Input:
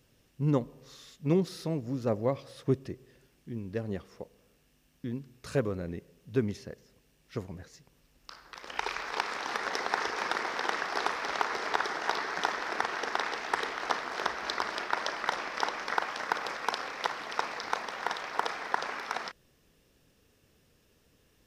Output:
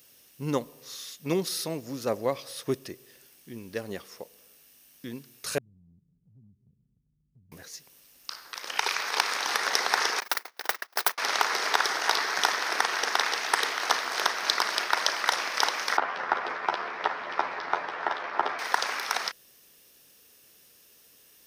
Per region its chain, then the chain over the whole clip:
0:05.58–0:07.52: mu-law and A-law mismatch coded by mu + inverse Chebyshev low-pass filter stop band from 740 Hz, stop band 70 dB + downward compressor 2 to 1, threshold −59 dBFS
0:10.20–0:11.18: one scale factor per block 5 bits + noise gate −31 dBFS, range −41 dB
0:15.97–0:18.59: low-pass filter 1,800 Hz + double-tracking delay 12 ms −5 dB + frequency shifter −67 Hz
whole clip: RIAA equalisation recording; notch filter 7,400 Hz, Q 10; level +4 dB

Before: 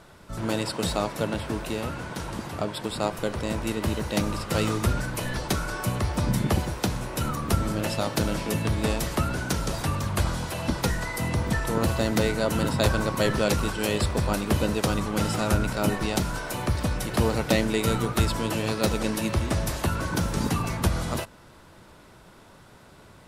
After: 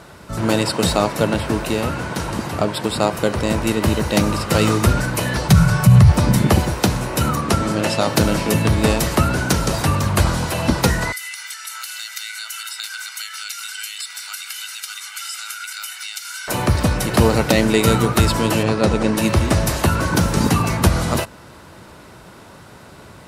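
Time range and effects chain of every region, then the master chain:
0:05.49–0:06.12: high-pass filter 61 Hz + low shelf with overshoot 210 Hz +10.5 dB, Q 3
0:07.41–0:08.08: low-pass filter 9,700 Hz + low-shelf EQ 92 Hz −11.5 dB
0:11.12–0:16.48: Bessel high-pass filter 2,400 Hz, order 6 + downward compressor 3 to 1, threshold −39 dBFS + comb filter 1.4 ms, depth 88%
0:18.63–0:19.18: low-pass filter 10,000 Hz 24 dB per octave + high-shelf EQ 2,700 Hz −9 dB
whole clip: high-pass filter 51 Hz; notch filter 3,400 Hz, Q 22; boost into a limiter +10.5 dB; level −1 dB

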